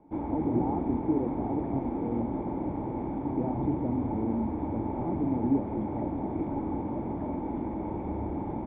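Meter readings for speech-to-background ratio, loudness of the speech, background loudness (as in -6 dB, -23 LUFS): -1.0 dB, -34.0 LUFS, -33.0 LUFS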